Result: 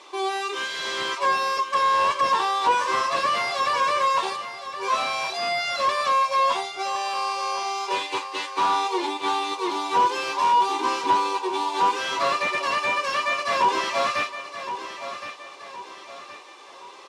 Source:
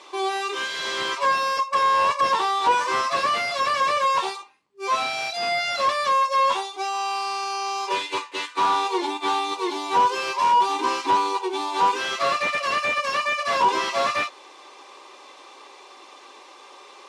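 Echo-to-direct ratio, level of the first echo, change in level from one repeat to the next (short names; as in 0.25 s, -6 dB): -10.0 dB, -11.0 dB, -7.5 dB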